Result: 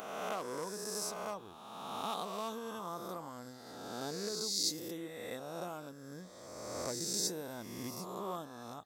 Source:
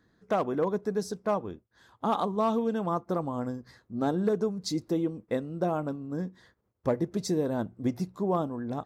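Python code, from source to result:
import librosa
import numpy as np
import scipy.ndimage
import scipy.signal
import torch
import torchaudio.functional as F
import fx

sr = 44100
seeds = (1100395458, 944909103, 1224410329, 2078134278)

y = fx.spec_swells(x, sr, rise_s=1.83)
y = scipy.signal.lfilter([1.0, -0.9], [1.0], y)
y = F.gain(torch.from_numpy(y), 1.5).numpy()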